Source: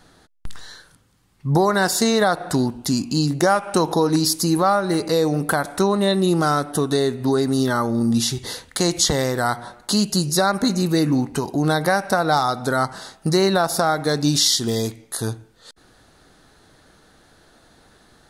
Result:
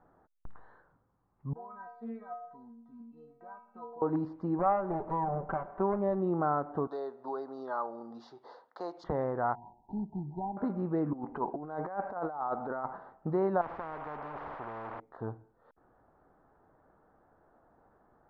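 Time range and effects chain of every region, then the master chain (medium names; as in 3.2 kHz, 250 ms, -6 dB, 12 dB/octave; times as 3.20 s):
1.53–4.02 s: inharmonic resonator 230 Hz, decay 0.62 s, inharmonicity 0.008 + loudspeaker Doppler distortion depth 0.15 ms
4.59–6.20 s: comb filter that takes the minimum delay 5.2 ms + low-pass 3.3 kHz 6 dB/octave
6.87–9.04 s: high-pass 570 Hz + resonant high shelf 3.4 kHz +12 dB, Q 3
9.55–10.57 s: CVSD coder 32 kbps + brick-wall FIR band-stop 970–2800 Hz + static phaser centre 1.3 kHz, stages 4
11.13–12.97 s: compressor with a negative ratio -23 dBFS, ratio -0.5 + peaking EQ 100 Hz -13.5 dB 0.95 oct
13.61–15.00 s: jump at every zero crossing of -30 dBFS + spectrum-flattening compressor 10:1
whole clip: low-pass 1 kHz 24 dB/octave; tilt shelf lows -8 dB, about 710 Hz; trim -7 dB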